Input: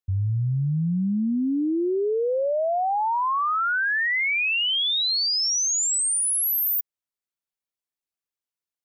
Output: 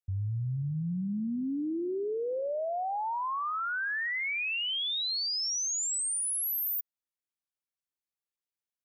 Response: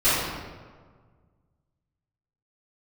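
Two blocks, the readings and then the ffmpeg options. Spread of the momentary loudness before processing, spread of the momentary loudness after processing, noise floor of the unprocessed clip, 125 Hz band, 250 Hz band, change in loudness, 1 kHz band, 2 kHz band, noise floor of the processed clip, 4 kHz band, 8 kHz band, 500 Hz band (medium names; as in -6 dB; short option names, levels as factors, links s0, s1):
5 LU, 5 LU, under -85 dBFS, -8.5 dB, -8.5 dB, -8.5 dB, -9.0 dB, -9.0 dB, under -85 dBFS, -8.5 dB, -8.0 dB, -9.0 dB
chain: -filter_complex "[0:a]asplit=2[s0][s1];[1:a]atrim=start_sample=2205,lowpass=2400[s2];[s1][s2]afir=irnorm=-1:irlink=0,volume=0.015[s3];[s0][s3]amix=inputs=2:normalize=0,alimiter=limit=0.0794:level=0:latency=1:release=47,volume=0.473"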